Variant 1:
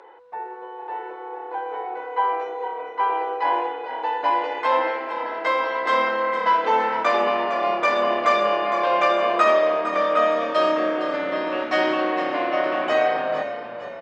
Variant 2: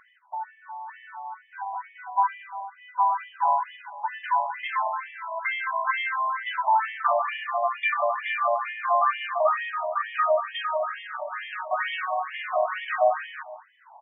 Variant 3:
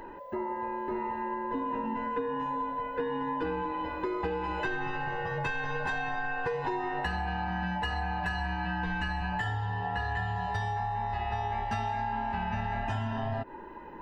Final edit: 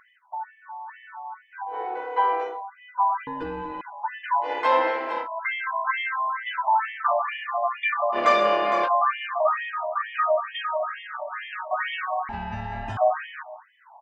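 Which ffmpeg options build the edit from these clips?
-filter_complex "[0:a]asplit=3[a][b][c];[2:a]asplit=2[d][e];[1:a]asplit=6[f][g][h][i][j][k];[f]atrim=end=1.82[l];[a]atrim=start=1.66:end=2.62[m];[g]atrim=start=2.46:end=3.272[n];[d]atrim=start=3.268:end=3.812[o];[h]atrim=start=3.808:end=4.51[p];[b]atrim=start=4.41:end=5.28[q];[i]atrim=start=5.18:end=8.18[r];[c]atrim=start=8.12:end=8.89[s];[j]atrim=start=8.83:end=12.292[t];[e]atrim=start=12.288:end=12.972[u];[k]atrim=start=12.968[v];[l][m]acrossfade=d=0.16:c1=tri:c2=tri[w];[w][n]acrossfade=d=0.16:c1=tri:c2=tri[x];[x][o]acrossfade=d=0.004:c1=hsin:c2=hsin[y];[y][p]acrossfade=d=0.004:c1=hsin:c2=hsin[z];[z][q]acrossfade=d=0.1:c1=tri:c2=tri[aa];[aa][r]acrossfade=d=0.1:c1=tri:c2=tri[ab];[ab][s]acrossfade=d=0.06:c1=tri:c2=tri[ac];[ac][t]acrossfade=d=0.06:c1=tri:c2=tri[ad];[ad][u]acrossfade=d=0.004:c1=hsin:c2=hsin[ae];[ae][v]acrossfade=d=0.004:c1=hsin:c2=hsin"

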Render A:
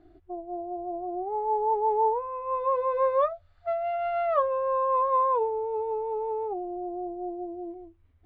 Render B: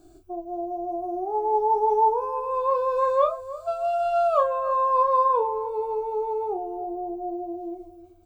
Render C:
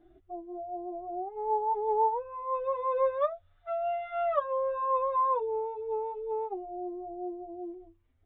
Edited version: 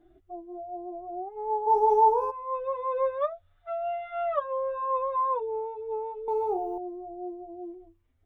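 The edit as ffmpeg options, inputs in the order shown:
-filter_complex "[1:a]asplit=2[a][b];[2:a]asplit=3[c][d][e];[c]atrim=end=1.68[f];[a]atrim=start=1.66:end=2.32[g];[d]atrim=start=2.3:end=6.282[h];[b]atrim=start=6.278:end=6.782[i];[e]atrim=start=6.778[j];[f][g]acrossfade=d=0.02:c1=tri:c2=tri[k];[k][h]acrossfade=d=0.02:c1=tri:c2=tri[l];[l][i]acrossfade=d=0.004:c1=hsin:c2=hsin[m];[m][j]acrossfade=d=0.004:c1=hsin:c2=hsin"

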